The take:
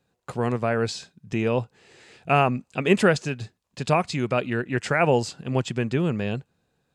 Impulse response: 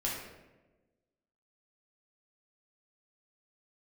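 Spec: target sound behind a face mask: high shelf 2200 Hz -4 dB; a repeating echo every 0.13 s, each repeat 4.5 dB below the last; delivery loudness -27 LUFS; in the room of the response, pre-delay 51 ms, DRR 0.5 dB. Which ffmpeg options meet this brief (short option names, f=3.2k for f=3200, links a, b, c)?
-filter_complex "[0:a]aecho=1:1:130|260|390|520|650|780|910|1040|1170:0.596|0.357|0.214|0.129|0.0772|0.0463|0.0278|0.0167|0.01,asplit=2[a][b];[1:a]atrim=start_sample=2205,adelay=51[c];[b][c]afir=irnorm=-1:irlink=0,volume=-5.5dB[d];[a][d]amix=inputs=2:normalize=0,highshelf=f=2.2k:g=-4,volume=-6.5dB"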